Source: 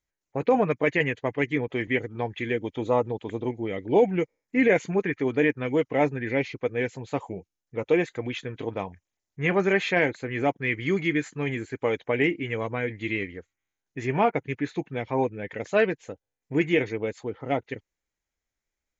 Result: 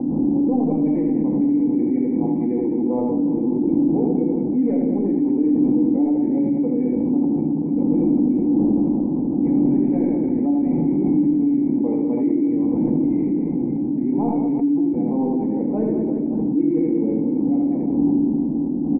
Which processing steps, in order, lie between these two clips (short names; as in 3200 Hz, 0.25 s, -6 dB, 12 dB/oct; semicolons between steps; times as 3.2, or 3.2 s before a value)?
wind noise 250 Hz -25 dBFS; HPF 47 Hz; resonant low shelf 140 Hz -10.5 dB, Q 1.5; soft clip -11.5 dBFS, distortion -17 dB; vocal tract filter u; reverse bouncing-ball echo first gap 80 ms, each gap 1.4×, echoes 5; shoebox room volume 700 m³, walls furnished, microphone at 2 m; fast leveller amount 70%; gain -2 dB